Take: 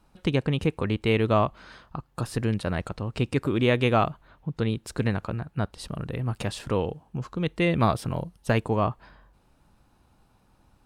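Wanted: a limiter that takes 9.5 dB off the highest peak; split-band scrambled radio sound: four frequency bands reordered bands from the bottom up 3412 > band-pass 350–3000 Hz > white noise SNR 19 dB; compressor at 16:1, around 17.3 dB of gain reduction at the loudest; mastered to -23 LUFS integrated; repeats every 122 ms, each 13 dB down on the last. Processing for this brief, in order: compression 16:1, threshold -34 dBFS; peak limiter -30.5 dBFS; feedback delay 122 ms, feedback 22%, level -13 dB; four frequency bands reordered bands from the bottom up 3412; band-pass 350–3000 Hz; white noise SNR 19 dB; trim +20 dB

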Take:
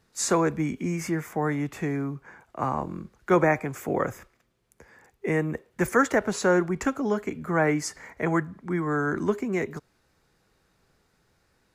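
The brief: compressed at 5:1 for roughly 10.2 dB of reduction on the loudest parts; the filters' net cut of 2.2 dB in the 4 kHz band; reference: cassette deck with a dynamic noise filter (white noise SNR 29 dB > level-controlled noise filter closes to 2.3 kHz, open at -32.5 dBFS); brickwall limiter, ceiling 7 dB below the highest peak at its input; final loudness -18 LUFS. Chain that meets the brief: peaking EQ 4 kHz -3 dB; compression 5:1, threshold -27 dBFS; peak limiter -24.5 dBFS; white noise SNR 29 dB; level-controlled noise filter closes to 2.3 kHz, open at -32.5 dBFS; trim +17 dB

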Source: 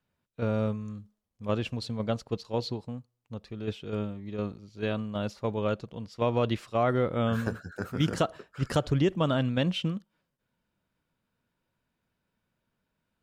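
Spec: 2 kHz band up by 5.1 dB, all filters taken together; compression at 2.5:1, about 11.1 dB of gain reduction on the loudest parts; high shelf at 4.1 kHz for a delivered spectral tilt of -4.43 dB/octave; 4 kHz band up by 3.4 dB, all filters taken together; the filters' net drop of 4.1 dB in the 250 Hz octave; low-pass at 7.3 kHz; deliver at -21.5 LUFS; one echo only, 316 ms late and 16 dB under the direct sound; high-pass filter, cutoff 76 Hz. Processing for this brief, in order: high-pass 76 Hz; low-pass 7.3 kHz; peaking EQ 250 Hz -5.5 dB; peaking EQ 2 kHz +7 dB; peaking EQ 4 kHz +3.5 dB; treble shelf 4.1 kHz -3.5 dB; compression 2.5:1, threshold -39 dBFS; delay 316 ms -16 dB; trim +19 dB

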